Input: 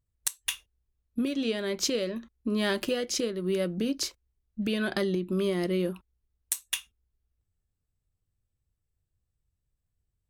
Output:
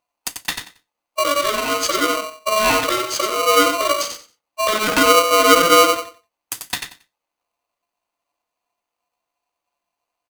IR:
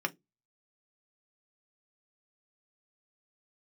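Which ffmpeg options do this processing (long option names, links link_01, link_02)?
-filter_complex "[0:a]asettb=1/sr,asplit=3[link_01][link_02][link_03];[link_01]atrim=end=4.724[link_04];[link_02]atrim=start=4.72:end=5.85,asetpts=PTS-STARTPTS,afade=type=in:duration=0.004:curve=qsin,afade=type=out:start_time=1.126:duration=0.004:curve=qsin,equalizer=frequency=570:width=1.6:gain=7.5[link_05];[link_03]atrim=start=5.846[link_06];[link_04][link_05]acrossfade=duration=0.004:curve1=hsin:curve2=qsin[link_07];[link_07][link_06]acrossfade=duration=0.004:curve1=qsin:curve2=hsin,aecho=1:1:91|182|273:0.473|0.0946|0.0189[link_08];[1:a]atrim=start_sample=2205,atrim=end_sample=3969[link_09];[link_08][link_09]afir=irnorm=-1:irlink=0,aeval=exprs='val(0)*sgn(sin(2*PI*860*n/s))':channel_layout=same,volume=4.5dB"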